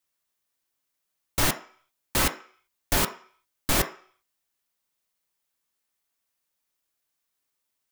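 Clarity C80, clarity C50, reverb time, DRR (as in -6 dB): 17.5 dB, 12.5 dB, 0.50 s, 5.0 dB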